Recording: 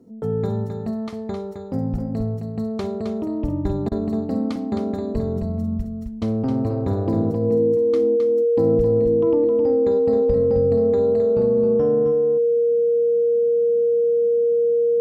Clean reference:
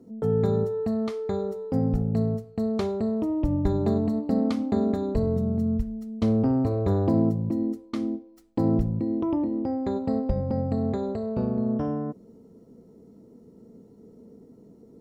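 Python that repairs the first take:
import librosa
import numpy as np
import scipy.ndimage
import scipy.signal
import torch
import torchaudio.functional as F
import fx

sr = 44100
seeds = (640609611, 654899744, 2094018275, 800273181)

y = fx.notch(x, sr, hz=470.0, q=30.0)
y = fx.fix_interpolate(y, sr, at_s=(3.89,), length_ms=25.0)
y = fx.fix_echo_inverse(y, sr, delay_ms=264, level_db=-6.0)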